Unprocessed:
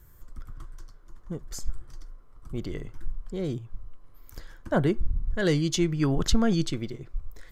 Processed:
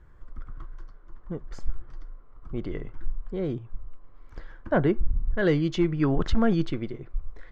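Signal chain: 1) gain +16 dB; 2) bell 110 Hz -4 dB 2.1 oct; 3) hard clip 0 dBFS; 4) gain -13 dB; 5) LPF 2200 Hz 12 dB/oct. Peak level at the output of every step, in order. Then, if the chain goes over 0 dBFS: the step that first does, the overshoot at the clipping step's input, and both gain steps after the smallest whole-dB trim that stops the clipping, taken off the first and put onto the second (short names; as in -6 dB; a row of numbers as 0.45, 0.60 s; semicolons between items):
+7.0, +6.5, 0.0, -13.0, -13.0 dBFS; step 1, 6.5 dB; step 1 +9 dB, step 4 -6 dB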